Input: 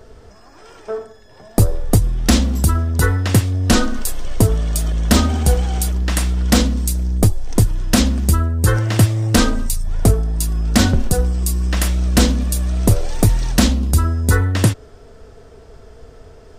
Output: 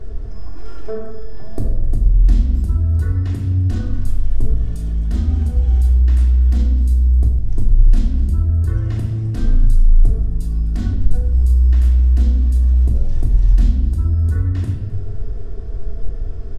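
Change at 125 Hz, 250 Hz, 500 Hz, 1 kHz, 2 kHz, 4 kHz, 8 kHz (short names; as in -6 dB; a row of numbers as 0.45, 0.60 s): +0.5, -10.0, -11.5, -18.0, -19.0, -22.0, -25.0 dB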